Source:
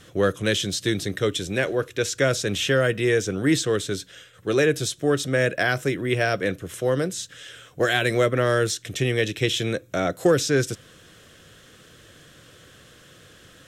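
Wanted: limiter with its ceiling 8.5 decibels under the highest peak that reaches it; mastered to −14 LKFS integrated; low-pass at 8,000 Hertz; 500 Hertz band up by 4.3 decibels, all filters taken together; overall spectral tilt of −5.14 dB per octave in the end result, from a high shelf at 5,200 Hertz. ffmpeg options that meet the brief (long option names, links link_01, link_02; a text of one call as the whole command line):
ffmpeg -i in.wav -af "lowpass=8000,equalizer=frequency=500:width_type=o:gain=5,highshelf=frequency=5200:gain=-7,volume=10.5dB,alimiter=limit=-3dB:level=0:latency=1" out.wav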